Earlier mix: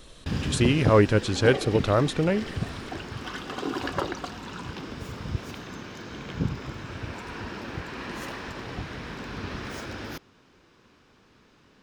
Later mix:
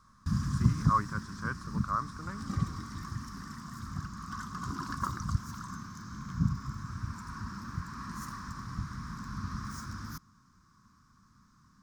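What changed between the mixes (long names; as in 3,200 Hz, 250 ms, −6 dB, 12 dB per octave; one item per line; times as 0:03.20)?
speech: add three-way crossover with the lows and the highs turned down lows −22 dB, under 390 Hz, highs −22 dB, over 2,100 Hz
second sound: entry +1.05 s
master: add drawn EQ curve 210 Hz 0 dB, 450 Hz −28 dB, 790 Hz −24 dB, 1,100 Hz +3 dB, 2,800 Hz −25 dB, 5,600 Hz −1 dB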